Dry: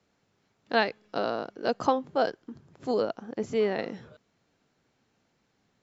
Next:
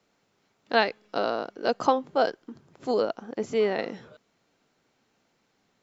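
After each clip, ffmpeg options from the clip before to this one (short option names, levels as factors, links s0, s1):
-af "equalizer=f=70:t=o:w=2.6:g=-9,bandreject=f=1700:w=26,volume=1.41"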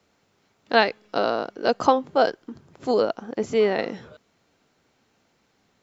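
-af "equalizer=f=76:w=2.1:g=8.5,volume=1.58"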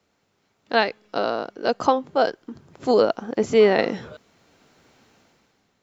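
-af "dynaudnorm=f=120:g=11:m=4.22,volume=0.708"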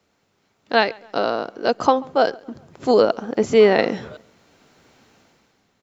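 -filter_complex "[0:a]asplit=2[s0][s1];[s1]adelay=137,lowpass=f=3700:p=1,volume=0.0631,asplit=2[s2][s3];[s3]adelay=137,lowpass=f=3700:p=1,volume=0.46,asplit=2[s4][s5];[s5]adelay=137,lowpass=f=3700:p=1,volume=0.46[s6];[s0][s2][s4][s6]amix=inputs=4:normalize=0,volume=1.33"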